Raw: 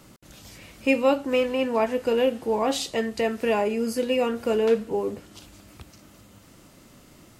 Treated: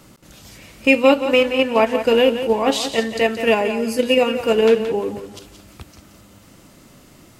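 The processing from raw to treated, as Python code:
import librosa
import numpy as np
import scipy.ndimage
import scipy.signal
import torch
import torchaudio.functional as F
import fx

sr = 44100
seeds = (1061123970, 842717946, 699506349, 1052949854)

p1 = fx.dynamic_eq(x, sr, hz=2800.0, q=1.3, threshold_db=-44.0, ratio=4.0, max_db=5)
p2 = fx.level_steps(p1, sr, step_db=22)
p3 = p1 + (p2 * 10.0 ** (-1.5 / 20.0))
p4 = fx.echo_feedback(p3, sr, ms=174, feedback_pct=27, wet_db=-10)
y = p4 * 10.0 ** (2.5 / 20.0)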